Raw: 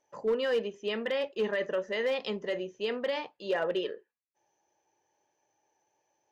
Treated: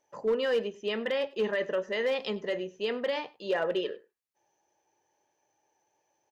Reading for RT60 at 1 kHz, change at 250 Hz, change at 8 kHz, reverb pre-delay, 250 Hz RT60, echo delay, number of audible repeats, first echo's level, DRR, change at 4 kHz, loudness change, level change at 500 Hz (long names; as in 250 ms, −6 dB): no reverb audible, +1.0 dB, can't be measured, no reverb audible, no reverb audible, 98 ms, 1, −21.5 dB, no reverb audible, +1.0 dB, +1.0 dB, +1.0 dB